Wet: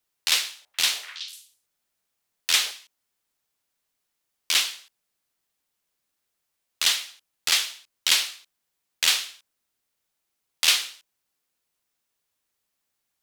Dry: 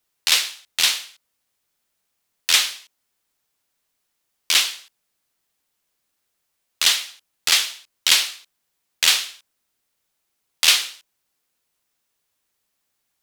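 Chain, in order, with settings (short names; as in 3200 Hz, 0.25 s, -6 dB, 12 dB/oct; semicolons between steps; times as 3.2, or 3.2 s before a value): 0.49–2.71 delay with a stepping band-pass 0.124 s, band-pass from 570 Hz, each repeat 1.4 oct, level -6 dB; gain -4.5 dB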